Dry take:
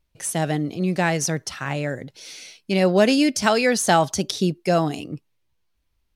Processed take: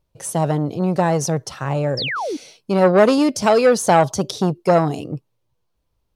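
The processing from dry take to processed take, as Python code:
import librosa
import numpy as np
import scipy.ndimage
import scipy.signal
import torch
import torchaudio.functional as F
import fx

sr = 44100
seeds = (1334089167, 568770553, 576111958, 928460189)

y = fx.graphic_eq(x, sr, hz=(125, 500, 1000, 2000), db=(9, 9, 5, -5))
y = fx.spec_paint(y, sr, seeds[0], shape='fall', start_s=1.97, length_s=0.4, low_hz=260.0, high_hz=5700.0, level_db=-23.0)
y = fx.transformer_sat(y, sr, knee_hz=780.0)
y = y * librosa.db_to_amplitude(-1.0)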